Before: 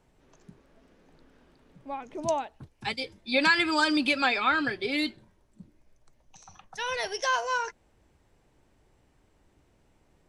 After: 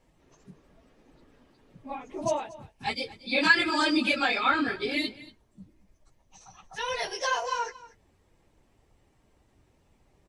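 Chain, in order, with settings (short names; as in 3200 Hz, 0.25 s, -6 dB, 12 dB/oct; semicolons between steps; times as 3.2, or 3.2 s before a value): phase scrambler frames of 50 ms; notch 1500 Hz, Q 14; on a send: echo 0.232 s -19 dB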